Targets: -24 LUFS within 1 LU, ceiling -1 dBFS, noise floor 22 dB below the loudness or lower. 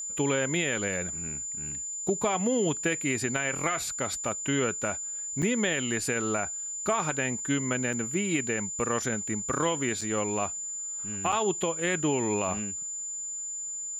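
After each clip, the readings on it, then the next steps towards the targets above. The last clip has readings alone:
dropouts 4; longest dropout 5.2 ms; steady tone 7100 Hz; tone level -33 dBFS; loudness -28.5 LUFS; peak -12.0 dBFS; loudness target -24.0 LUFS
-> interpolate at 5.42/7.93/10.01/11.32, 5.2 ms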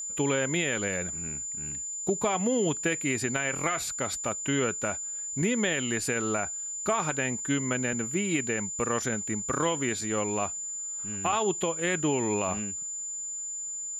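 dropouts 0; steady tone 7100 Hz; tone level -33 dBFS
-> notch 7100 Hz, Q 30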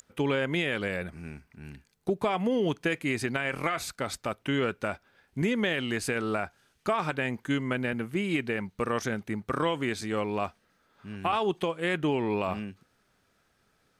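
steady tone none; loudness -30.0 LUFS; peak -12.5 dBFS; loudness target -24.0 LUFS
-> gain +6 dB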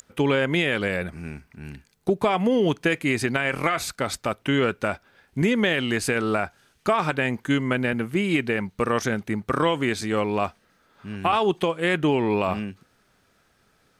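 loudness -24.0 LUFS; peak -6.5 dBFS; noise floor -64 dBFS

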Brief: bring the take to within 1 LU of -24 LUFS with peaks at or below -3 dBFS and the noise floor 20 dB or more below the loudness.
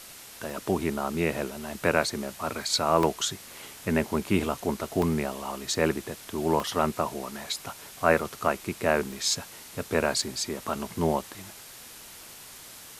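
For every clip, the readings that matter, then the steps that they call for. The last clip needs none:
dropouts 8; longest dropout 2.2 ms; noise floor -46 dBFS; noise floor target -48 dBFS; loudness -28.0 LUFS; peak -6.5 dBFS; loudness target -24.0 LUFS
-> interpolate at 0.5/3.03/5.02/5.73/6.6/8.19/9.12/10.22, 2.2 ms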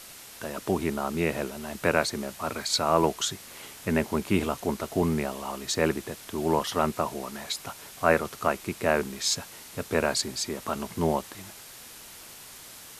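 dropouts 0; noise floor -46 dBFS; noise floor target -48 dBFS
-> denoiser 6 dB, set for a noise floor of -46 dBFS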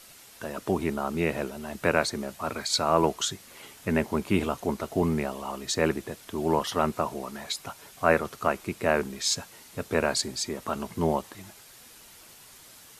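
noise floor -51 dBFS; loudness -28.5 LUFS; peak -6.5 dBFS; loudness target -24.0 LUFS
-> gain +4.5 dB; limiter -3 dBFS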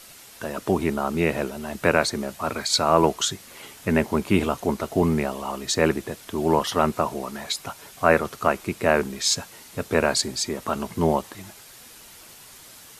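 loudness -24.0 LUFS; peak -3.0 dBFS; noise floor -47 dBFS

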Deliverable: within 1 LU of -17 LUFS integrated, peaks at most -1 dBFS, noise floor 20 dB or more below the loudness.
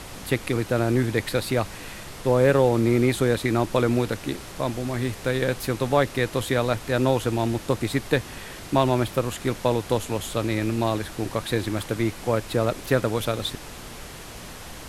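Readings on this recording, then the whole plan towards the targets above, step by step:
noise floor -40 dBFS; noise floor target -45 dBFS; loudness -24.5 LUFS; peak -5.0 dBFS; loudness target -17.0 LUFS
-> noise print and reduce 6 dB; gain +7.5 dB; limiter -1 dBFS

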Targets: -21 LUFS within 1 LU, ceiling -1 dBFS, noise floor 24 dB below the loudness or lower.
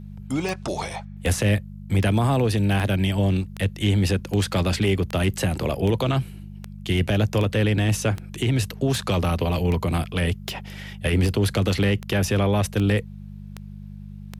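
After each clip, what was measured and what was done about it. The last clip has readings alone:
clicks 19; hum 50 Hz; harmonics up to 200 Hz; hum level -36 dBFS; loudness -23.0 LUFS; peak -10.5 dBFS; loudness target -21.0 LUFS
-> de-click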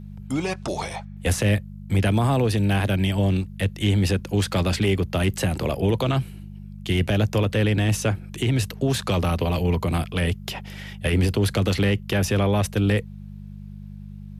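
clicks 0; hum 50 Hz; harmonics up to 200 Hz; hum level -36 dBFS
-> de-hum 50 Hz, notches 4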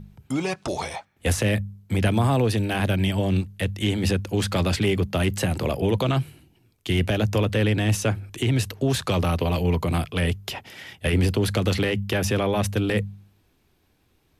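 hum none; loudness -24.0 LUFS; peak -10.0 dBFS; loudness target -21.0 LUFS
-> gain +3 dB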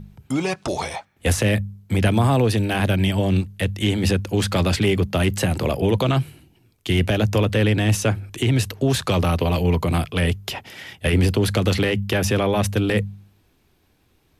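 loudness -21.0 LUFS; peak -7.0 dBFS; noise floor -62 dBFS

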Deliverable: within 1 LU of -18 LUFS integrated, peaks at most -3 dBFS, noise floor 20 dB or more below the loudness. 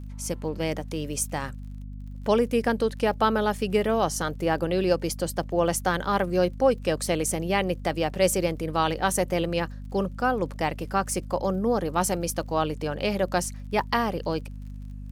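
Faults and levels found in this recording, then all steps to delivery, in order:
ticks 35/s; hum 50 Hz; harmonics up to 250 Hz; hum level -35 dBFS; loudness -26.0 LUFS; peak -8.0 dBFS; loudness target -18.0 LUFS
-> de-click; notches 50/100/150/200/250 Hz; gain +8 dB; limiter -3 dBFS

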